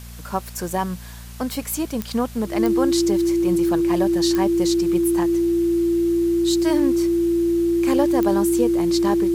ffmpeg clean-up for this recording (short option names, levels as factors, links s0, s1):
-af "adeclick=t=4,bandreject=f=58.7:t=h:w=4,bandreject=f=117.4:t=h:w=4,bandreject=f=176.1:t=h:w=4,bandreject=f=234.8:t=h:w=4,bandreject=f=340:w=30,afwtdn=0.0063"